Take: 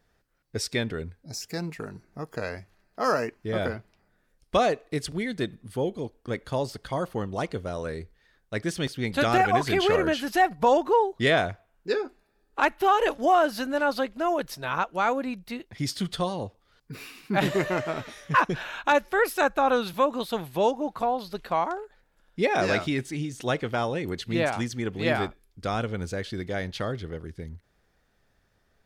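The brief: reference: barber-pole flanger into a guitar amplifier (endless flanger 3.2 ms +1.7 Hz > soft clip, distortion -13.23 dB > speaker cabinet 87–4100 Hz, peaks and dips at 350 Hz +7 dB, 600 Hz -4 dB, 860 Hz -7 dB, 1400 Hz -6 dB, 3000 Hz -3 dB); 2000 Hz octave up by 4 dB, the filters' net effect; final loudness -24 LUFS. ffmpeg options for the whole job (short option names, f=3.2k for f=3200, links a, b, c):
-filter_complex "[0:a]equalizer=f=2k:t=o:g=8,asplit=2[a][b];[b]adelay=3.2,afreqshift=1.7[c];[a][c]amix=inputs=2:normalize=1,asoftclip=threshold=-18dB,highpass=87,equalizer=f=350:t=q:w=4:g=7,equalizer=f=600:t=q:w=4:g=-4,equalizer=f=860:t=q:w=4:g=-7,equalizer=f=1.4k:t=q:w=4:g=-6,equalizer=f=3k:t=q:w=4:g=-3,lowpass=f=4.1k:w=0.5412,lowpass=f=4.1k:w=1.3066,volume=7dB"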